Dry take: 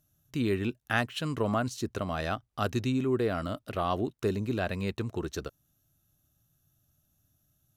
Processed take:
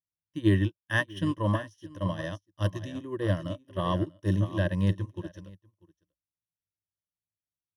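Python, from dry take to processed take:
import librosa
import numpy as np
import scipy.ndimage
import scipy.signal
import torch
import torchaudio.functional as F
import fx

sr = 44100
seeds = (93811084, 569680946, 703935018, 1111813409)

y = fx.hpss(x, sr, part='percussive', gain_db=-8)
y = fx.ripple_eq(y, sr, per_octave=1.2, db=18)
y = y + 10.0 ** (-9.5 / 20.0) * np.pad(y, (int(642 * sr / 1000.0), 0))[:len(y)]
y = fx.upward_expand(y, sr, threshold_db=-50.0, expansion=2.5)
y = F.gain(torch.from_numpy(y), 6.5).numpy()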